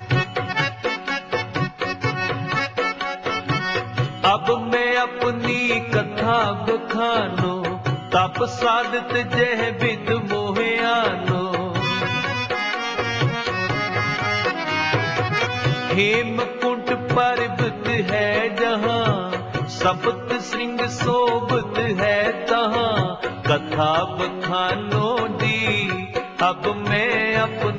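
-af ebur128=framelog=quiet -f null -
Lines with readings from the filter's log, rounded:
Integrated loudness:
  I:         -21.2 LUFS
  Threshold: -31.2 LUFS
Loudness range:
  LRA:         1.5 LU
  Threshold: -41.1 LUFS
  LRA low:   -21.9 LUFS
  LRA high:  -20.3 LUFS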